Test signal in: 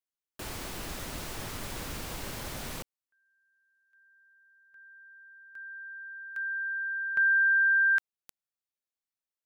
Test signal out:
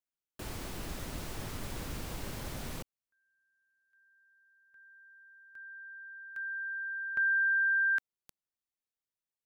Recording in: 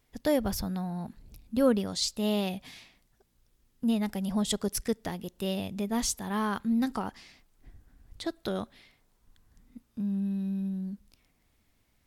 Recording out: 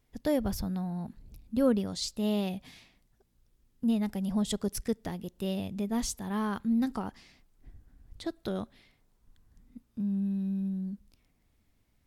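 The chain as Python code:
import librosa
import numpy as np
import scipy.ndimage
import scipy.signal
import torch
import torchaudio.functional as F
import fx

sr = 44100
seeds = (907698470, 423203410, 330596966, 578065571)

y = fx.low_shelf(x, sr, hz=440.0, db=6.0)
y = F.gain(torch.from_numpy(y), -5.0).numpy()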